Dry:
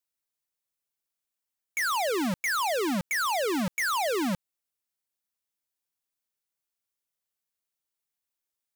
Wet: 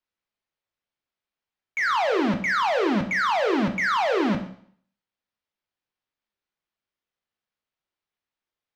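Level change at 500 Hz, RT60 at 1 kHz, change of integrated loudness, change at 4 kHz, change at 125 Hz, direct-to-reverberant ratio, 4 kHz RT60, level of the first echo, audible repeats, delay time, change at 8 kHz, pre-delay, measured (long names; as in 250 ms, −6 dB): +5.5 dB, 0.60 s, +4.5 dB, +0.5 dB, +5.0 dB, 5.0 dB, 0.55 s, no echo audible, no echo audible, no echo audible, −10.5 dB, 15 ms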